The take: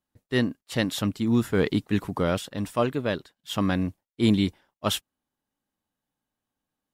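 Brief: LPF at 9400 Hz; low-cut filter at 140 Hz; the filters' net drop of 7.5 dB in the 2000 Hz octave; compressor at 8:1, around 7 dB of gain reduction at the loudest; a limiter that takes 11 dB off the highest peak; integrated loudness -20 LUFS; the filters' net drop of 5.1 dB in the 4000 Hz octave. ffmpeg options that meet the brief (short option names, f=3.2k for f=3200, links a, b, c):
-af "highpass=140,lowpass=9.4k,equalizer=f=2k:t=o:g=-9,equalizer=f=4k:t=o:g=-3,acompressor=threshold=-25dB:ratio=8,volume=16dB,alimiter=limit=-8dB:level=0:latency=1"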